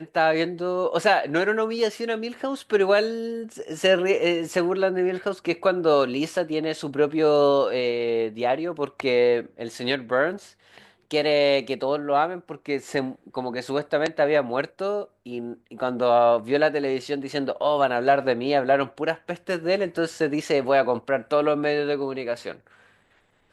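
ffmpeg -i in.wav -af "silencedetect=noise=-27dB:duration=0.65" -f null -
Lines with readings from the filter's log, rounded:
silence_start: 10.35
silence_end: 11.11 | silence_duration: 0.76
silence_start: 22.52
silence_end: 23.52 | silence_duration: 1.00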